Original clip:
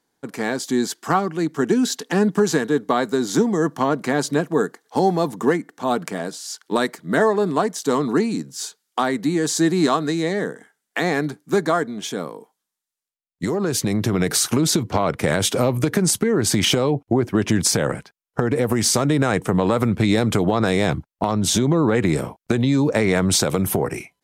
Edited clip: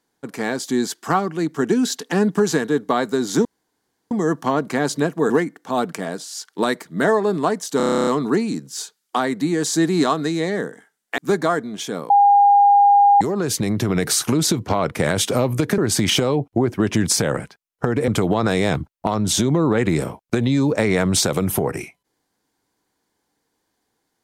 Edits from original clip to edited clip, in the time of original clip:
0:03.45: splice in room tone 0.66 s
0:04.64–0:05.43: remove
0:07.90: stutter 0.03 s, 11 plays
0:11.01–0:11.42: remove
0:12.34–0:13.45: beep over 810 Hz −9 dBFS
0:16.02–0:16.33: remove
0:18.63–0:20.25: remove

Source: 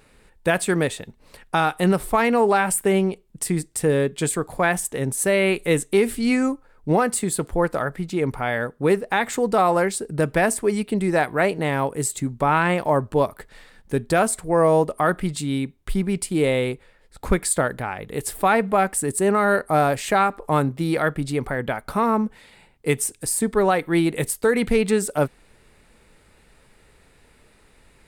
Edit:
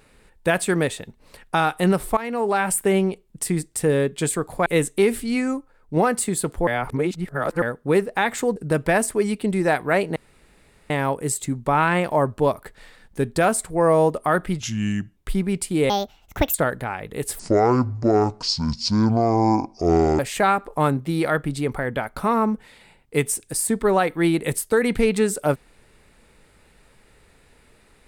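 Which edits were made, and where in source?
0:02.17–0:02.73: fade in, from −14.5 dB
0:04.66–0:05.61: remove
0:06.18–0:06.92: clip gain −3 dB
0:07.62–0:08.57: reverse
0:09.51–0:10.04: remove
0:11.64: splice in room tone 0.74 s
0:15.34–0:15.77: play speed 76%
0:16.50–0:17.52: play speed 158%
0:18.37–0:19.91: play speed 55%

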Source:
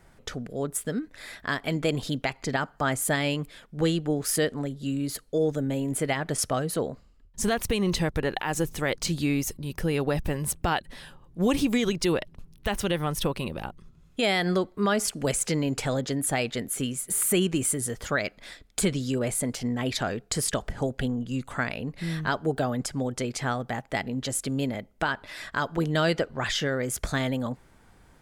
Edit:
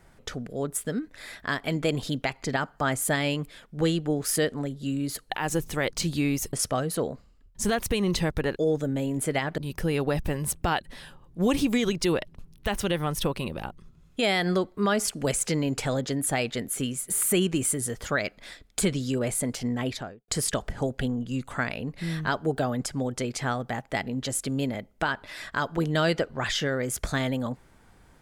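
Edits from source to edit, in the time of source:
0:05.30–0:06.32: swap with 0:08.35–0:09.58
0:19.77–0:20.28: fade out and dull

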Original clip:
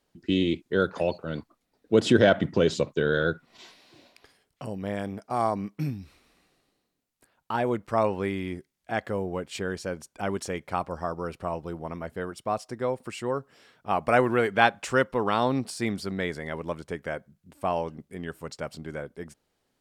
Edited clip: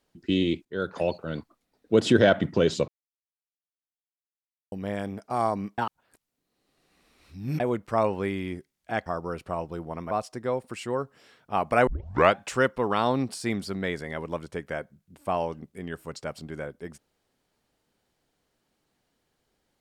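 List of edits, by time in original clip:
0:00.65–0:01.04: fade in, from −15 dB
0:02.88–0:04.72: silence
0:05.78–0:07.60: reverse
0:09.06–0:11.00: remove
0:12.05–0:12.47: remove
0:14.23: tape start 0.50 s

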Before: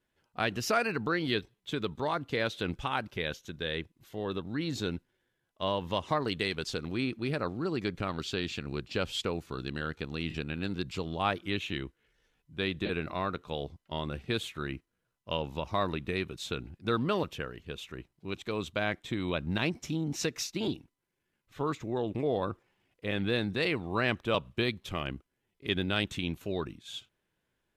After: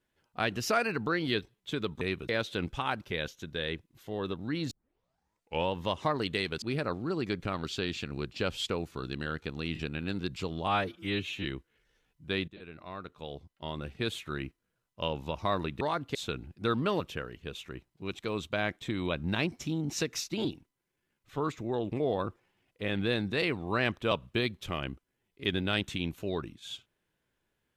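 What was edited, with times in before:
0:02.01–0:02.35: swap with 0:16.10–0:16.38
0:04.77: tape start 1.03 s
0:06.68–0:07.17: remove
0:11.22–0:11.74: time-stretch 1.5×
0:12.77–0:14.54: fade in, from −20 dB

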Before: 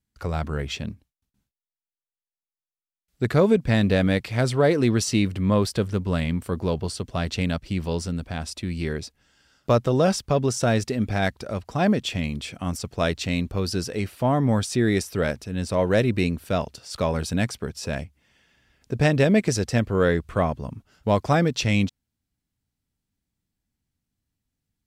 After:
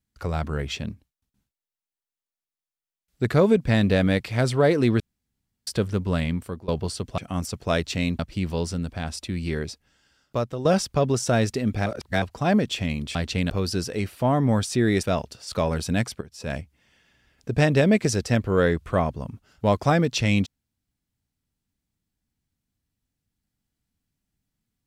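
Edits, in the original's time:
0:05.00–0:05.67: fill with room tone
0:06.17–0:06.68: fade out equal-power, to −22.5 dB
0:07.18–0:07.53: swap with 0:12.49–0:13.50
0:09.04–0:09.99: fade out, to −11 dB
0:11.20–0:11.56: reverse
0:15.03–0:16.46: remove
0:17.64–0:17.96: fade in quadratic, from −13.5 dB

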